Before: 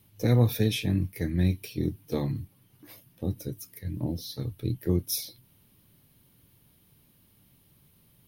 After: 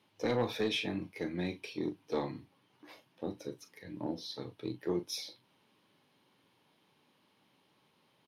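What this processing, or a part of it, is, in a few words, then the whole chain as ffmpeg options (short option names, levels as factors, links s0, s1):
intercom: -filter_complex "[0:a]highpass=340,lowpass=4300,equalizer=f=920:t=o:w=0.53:g=5.5,asoftclip=type=tanh:threshold=0.0708,asplit=2[s0][s1];[s1]adelay=40,volume=0.266[s2];[s0][s2]amix=inputs=2:normalize=0,asettb=1/sr,asplit=3[s3][s4][s5];[s3]atrim=end=0.934[s6];[s4]atrim=start=0.93:end=1.43,asetpts=PTS-STARTPTS,afade=t=in:d=0.004:c=qsin,afade=t=out:st=0.496:d=0.004:c=qsin,bandreject=f=1800:w=8.3[s7];[s5]atrim=start=1.426[s8];[s6][s7]acrossfade=d=0.004:c1=hsin:c2=qsin[s9];[s9][s8]acrossfade=d=0.004:c1=qsin:c2=hsin"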